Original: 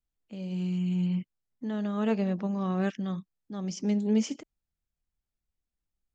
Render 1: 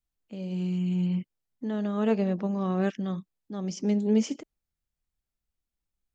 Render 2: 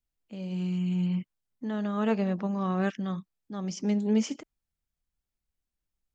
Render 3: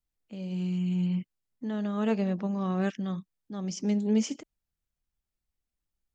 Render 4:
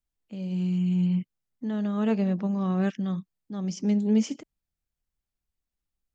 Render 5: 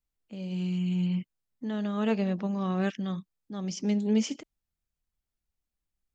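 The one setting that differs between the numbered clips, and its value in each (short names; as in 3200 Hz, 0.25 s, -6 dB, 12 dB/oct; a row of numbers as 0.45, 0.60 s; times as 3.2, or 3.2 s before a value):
dynamic EQ, frequency: 430, 1200, 9700, 160, 3300 Hz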